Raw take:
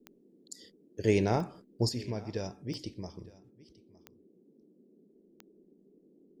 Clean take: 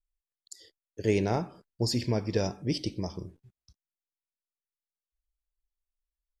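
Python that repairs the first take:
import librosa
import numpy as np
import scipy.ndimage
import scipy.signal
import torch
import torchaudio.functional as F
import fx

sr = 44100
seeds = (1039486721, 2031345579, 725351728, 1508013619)

y = fx.fix_declick_ar(x, sr, threshold=10.0)
y = fx.noise_reduce(y, sr, print_start_s=4.29, print_end_s=4.79, reduce_db=30.0)
y = fx.fix_echo_inverse(y, sr, delay_ms=912, level_db=-21.5)
y = fx.gain(y, sr, db=fx.steps((0.0, 0.0), (1.89, 8.0)))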